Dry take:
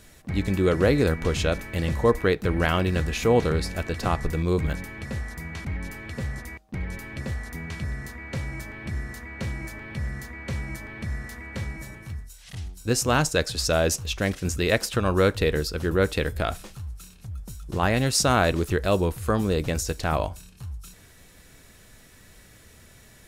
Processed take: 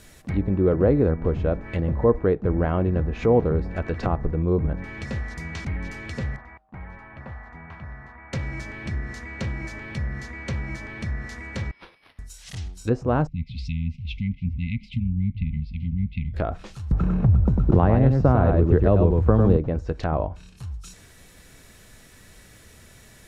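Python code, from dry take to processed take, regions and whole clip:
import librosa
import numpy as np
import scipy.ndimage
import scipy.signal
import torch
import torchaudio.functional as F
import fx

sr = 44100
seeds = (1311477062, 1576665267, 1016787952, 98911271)

y = fx.chain(x, sr, fx.lowpass(hz=1200.0, slope=12),
    fx.low_shelf_res(hz=600.0, db=-9.5, q=1.5), at=(6.36, 8.33))
y = fx.chain(y, sr, fx.steep_highpass(hz=2200.0, slope=36),
    fx.differentiator(),
    fx.resample_linear(factor=6), at=(11.71, 12.19))
y = fx.chain(y, sr, fx.brickwall_bandstop(low_hz=260.0, high_hz=2000.0),
    fx.air_absorb(metres=450.0), at=(13.27, 16.34))
y = fx.chain(y, sr, fx.low_shelf(hz=120.0, db=9.5),
    fx.echo_single(ms=99, db=-4.5),
    fx.band_squash(depth_pct=100), at=(16.91, 19.57))
y = fx.env_lowpass_down(y, sr, base_hz=830.0, full_db=-22.0)
y = fx.dynamic_eq(y, sr, hz=6400.0, q=1.2, threshold_db=-56.0, ratio=4.0, max_db=5)
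y = y * librosa.db_to_amplitude(2.0)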